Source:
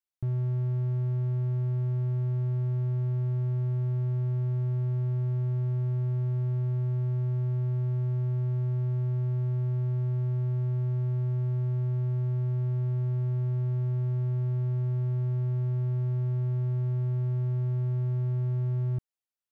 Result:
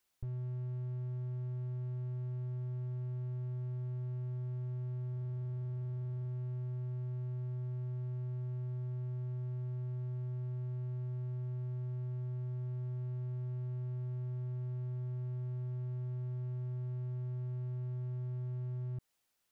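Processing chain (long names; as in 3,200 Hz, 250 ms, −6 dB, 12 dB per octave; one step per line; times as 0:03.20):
0:05.11–0:06.27: steady tone 1,600 Hz −50 dBFS
brickwall limiter −34 dBFS, peak gain reduction 11.5 dB
slew-rate limiting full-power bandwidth 0.35 Hz
level +13.5 dB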